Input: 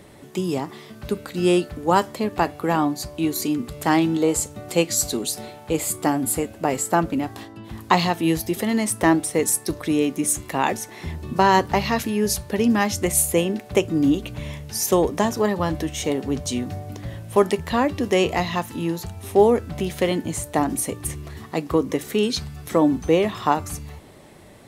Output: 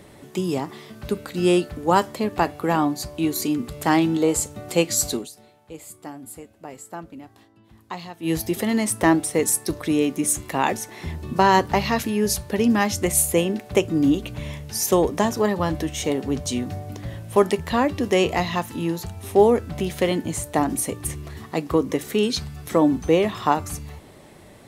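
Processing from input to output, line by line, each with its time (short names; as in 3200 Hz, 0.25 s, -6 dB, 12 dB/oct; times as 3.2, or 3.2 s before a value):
5.14–8.35 dip -16 dB, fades 0.15 s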